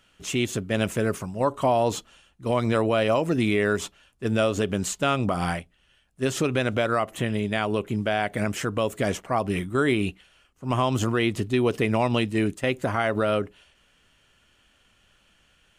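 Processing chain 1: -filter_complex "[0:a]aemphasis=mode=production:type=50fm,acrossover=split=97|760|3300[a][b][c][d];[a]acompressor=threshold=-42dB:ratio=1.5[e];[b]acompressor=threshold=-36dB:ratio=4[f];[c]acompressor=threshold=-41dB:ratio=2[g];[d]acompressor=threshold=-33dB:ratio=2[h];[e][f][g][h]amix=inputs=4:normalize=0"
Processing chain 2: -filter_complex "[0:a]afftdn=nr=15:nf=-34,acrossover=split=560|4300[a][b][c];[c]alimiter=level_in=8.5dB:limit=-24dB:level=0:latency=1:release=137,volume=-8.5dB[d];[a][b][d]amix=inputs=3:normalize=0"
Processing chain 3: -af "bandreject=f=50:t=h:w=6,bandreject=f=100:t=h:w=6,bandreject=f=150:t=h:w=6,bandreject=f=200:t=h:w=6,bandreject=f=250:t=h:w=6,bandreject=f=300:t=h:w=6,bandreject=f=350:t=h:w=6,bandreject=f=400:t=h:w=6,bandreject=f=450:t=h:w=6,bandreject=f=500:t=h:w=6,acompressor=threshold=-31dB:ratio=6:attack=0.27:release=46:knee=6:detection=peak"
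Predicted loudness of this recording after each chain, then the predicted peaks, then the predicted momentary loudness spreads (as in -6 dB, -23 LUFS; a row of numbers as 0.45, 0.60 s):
-32.0, -25.5, -37.0 LUFS; -15.5, -9.0, -25.5 dBFS; 5, 7, 5 LU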